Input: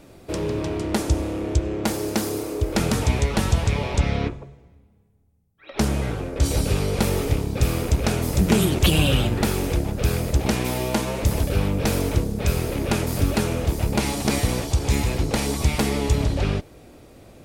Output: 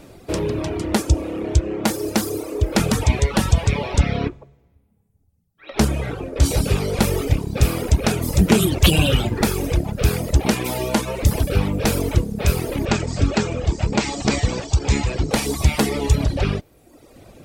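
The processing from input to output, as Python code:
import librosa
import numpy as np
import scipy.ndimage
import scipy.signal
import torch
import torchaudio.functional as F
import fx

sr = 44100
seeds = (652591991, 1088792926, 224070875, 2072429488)

y = fx.dereverb_blind(x, sr, rt60_s=1.0)
y = fx.cheby1_lowpass(y, sr, hz=8100.0, order=8, at=(12.85, 15.31))
y = y * 10.0 ** (4.5 / 20.0)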